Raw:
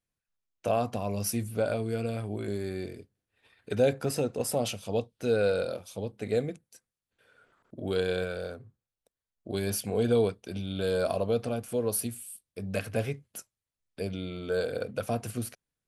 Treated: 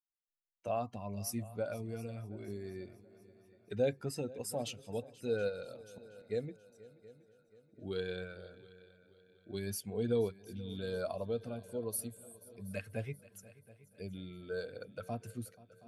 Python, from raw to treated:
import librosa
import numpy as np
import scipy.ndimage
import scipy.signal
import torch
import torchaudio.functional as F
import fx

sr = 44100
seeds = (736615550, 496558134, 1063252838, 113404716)

y = fx.bin_expand(x, sr, power=1.5)
y = fx.auto_swell(y, sr, attack_ms=493.0, at=(5.48, 6.29), fade=0.02)
y = fx.echo_heads(y, sr, ms=241, heads='second and third', feedback_pct=45, wet_db=-20.5)
y = y * librosa.db_to_amplitude(-6.0)